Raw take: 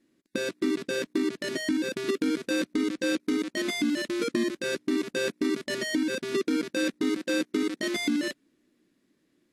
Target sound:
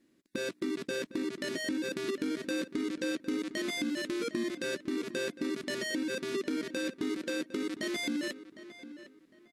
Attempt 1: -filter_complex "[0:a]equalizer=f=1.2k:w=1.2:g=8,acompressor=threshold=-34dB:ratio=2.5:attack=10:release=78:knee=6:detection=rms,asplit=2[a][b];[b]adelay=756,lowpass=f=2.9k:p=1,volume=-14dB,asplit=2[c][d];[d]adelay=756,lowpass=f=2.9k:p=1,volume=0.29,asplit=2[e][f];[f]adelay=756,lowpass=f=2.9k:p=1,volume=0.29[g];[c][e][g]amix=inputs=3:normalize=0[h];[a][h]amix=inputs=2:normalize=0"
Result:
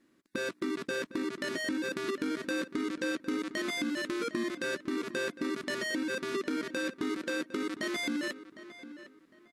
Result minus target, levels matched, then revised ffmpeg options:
1000 Hz band +5.5 dB
-filter_complex "[0:a]acompressor=threshold=-34dB:ratio=2.5:attack=10:release=78:knee=6:detection=rms,asplit=2[a][b];[b]adelay=756,lowpass=f=2.9k:p=1,volume=-14dB,asplit=2[c][d];[d]adelay=756,lowpass=f=2.9k:p=1,volume=0.29,asplit=2[e][f];[f]adelay=756,lowpass=f=2.9k:p=1,volume=0.29[g];[c][e][g]amix=inputs=3:normalize=0[h];[a][h]amix=inputs=2:normalize=0"

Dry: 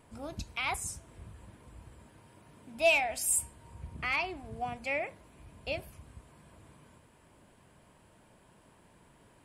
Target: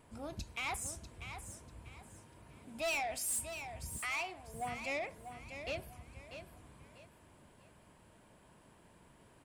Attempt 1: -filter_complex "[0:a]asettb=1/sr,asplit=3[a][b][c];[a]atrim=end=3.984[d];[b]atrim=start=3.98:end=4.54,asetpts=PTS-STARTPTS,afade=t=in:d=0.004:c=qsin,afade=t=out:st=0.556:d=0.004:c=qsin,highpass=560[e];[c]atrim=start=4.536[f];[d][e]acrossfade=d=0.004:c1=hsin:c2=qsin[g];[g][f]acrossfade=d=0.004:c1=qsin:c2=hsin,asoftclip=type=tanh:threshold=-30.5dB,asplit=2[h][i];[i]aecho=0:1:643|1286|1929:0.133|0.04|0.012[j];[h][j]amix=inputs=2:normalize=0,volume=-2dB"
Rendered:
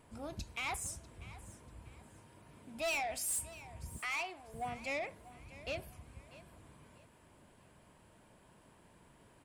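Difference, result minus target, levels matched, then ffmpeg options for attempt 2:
echo-to-direct -8 dB
-filter_complex "[0:a]asettb=1/sr,asplit=3[a][b][c];[a]atrim=end=3.984[d];[b]atrim=start=3.98:end=4.54,asetpts=PTS-STARTPTS,afade=t=in:d=0.004:c=qsin,afade=t=out:st=0.556:d=0.004:c=qsin,highpass=560[e];[c]atrim=start=4.536[f];[d][e]acrossfade=d=0.004:c1=hsin:c2=qsin[g];[g][f]acrossfade=d=0.004:c1=qsin:c2=hsin,asoftclip=type=tanh:threshold=-30.5dB,asplit=2[h][i];[i]aecho=0:1:643|1286|1929:0.335|0.1|0.0301[j];[h][j]amix=inputs=2:normalize=0,volume=-2dB"

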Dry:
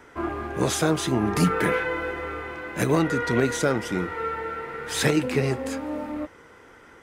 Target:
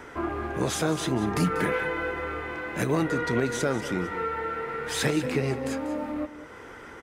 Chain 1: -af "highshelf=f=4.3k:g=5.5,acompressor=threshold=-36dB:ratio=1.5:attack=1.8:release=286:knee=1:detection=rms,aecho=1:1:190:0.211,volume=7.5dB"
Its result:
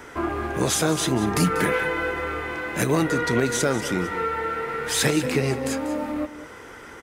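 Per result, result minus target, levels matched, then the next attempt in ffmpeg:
8000 Hz band +4.5 dB; compressor: peak gain reduction -3.5 dB
-af "highshelf=f=4.3k:g=-2.5,acompressor=threshold=-36dB:ratio=1.5:attack=1.8:release=286:knee=1:detection=rms,aecho=1:1:190:0.211,volume=7.5dB"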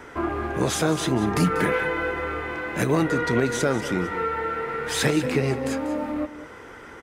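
compressor: peak gain reduction -3.5 dB
-af "highshelf=f=4.3k:g=-2.5,acompressor=threshold=-47dB:ratio=1.5:attack=1.8:release=286:knee=1:detection=rms,aecho=1:1:190:0.211,volume=7.5dB"

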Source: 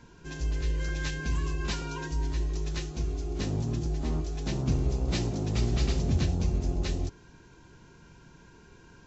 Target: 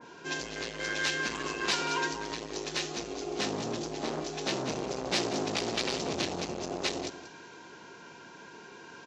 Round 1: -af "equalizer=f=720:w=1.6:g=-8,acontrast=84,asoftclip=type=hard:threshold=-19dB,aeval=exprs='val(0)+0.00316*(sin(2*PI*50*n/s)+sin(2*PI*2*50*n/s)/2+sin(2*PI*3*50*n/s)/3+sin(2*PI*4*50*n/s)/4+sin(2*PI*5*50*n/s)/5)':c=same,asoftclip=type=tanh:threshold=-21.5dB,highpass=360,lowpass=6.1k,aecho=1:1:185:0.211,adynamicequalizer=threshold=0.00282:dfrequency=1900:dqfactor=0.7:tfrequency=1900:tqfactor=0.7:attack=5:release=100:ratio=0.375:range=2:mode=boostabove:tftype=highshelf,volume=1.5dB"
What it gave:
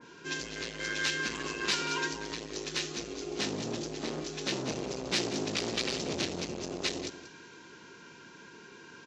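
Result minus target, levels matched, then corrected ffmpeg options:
1000 Hz band -4.0 dB
-af "equalizer=f=720:w=1.6:g=2.5,acontrast=84,asoftclip=type=hard:threshold=-19dB,aeval=exprs='val(0)+0.00316*(sin(2*PI*50*n/s)+sin(2*PI*2*50*n/s)/2+sin(2*PI*3*50*n/s)/3+sin(2*PI*4*50*n/s)/4+sin(2*PI*5*50*n/s)/5)':c=same,asoftclip=type=tanh:threshold=-21.5dB,highpass=360,lowpass=6.1k,aecho=1:1:185:0.211,adynamicequalizer=threshold=0.00282:dfrequency=1900:dqfactor=0.7:tfrequency=1900:tqfactor=0.7:attack=5:release=100:ratio=0.375:range=2:mode=boostabove:tftype=highshelf,volume=1.5dB"

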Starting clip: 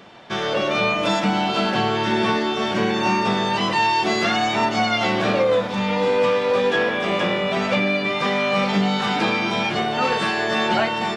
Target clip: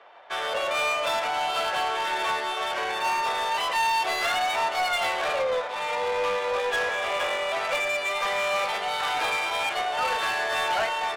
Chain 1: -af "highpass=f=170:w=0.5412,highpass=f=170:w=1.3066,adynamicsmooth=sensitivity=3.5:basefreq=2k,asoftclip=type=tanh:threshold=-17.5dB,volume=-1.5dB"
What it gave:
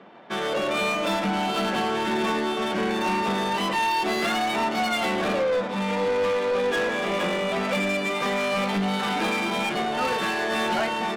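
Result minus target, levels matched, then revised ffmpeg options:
125 Hz band +17.0 dB
-af "highpass=f=560:w=0.5412,highpass=f=560:w=1.3066,adynamicsmooth=sensitivity=3.5:basefreq=2k,asoftclip=type=tanh:threshold=-17.5dB,volume=-1.5dB"

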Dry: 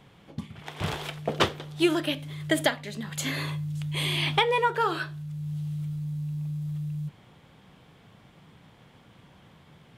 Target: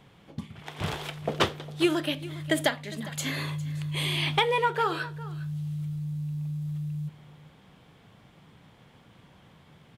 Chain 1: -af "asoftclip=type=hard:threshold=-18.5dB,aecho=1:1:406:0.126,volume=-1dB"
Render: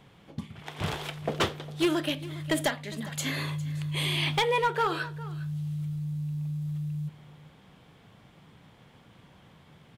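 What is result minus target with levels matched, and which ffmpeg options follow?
hard clip: distortion +23 dB
-af "asoftclip=type=hard:threshold=-11dB,aecho=1:1:406:0.126,volume=-1dB"

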